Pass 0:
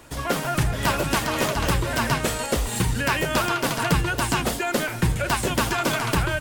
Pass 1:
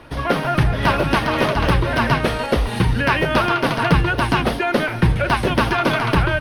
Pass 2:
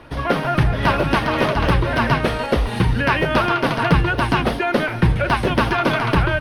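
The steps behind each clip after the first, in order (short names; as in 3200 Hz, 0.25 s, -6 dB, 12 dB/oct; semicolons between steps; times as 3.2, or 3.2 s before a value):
running mean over 6 samples; gain +6 dB
high shelf 5200 Hz -4.5 dB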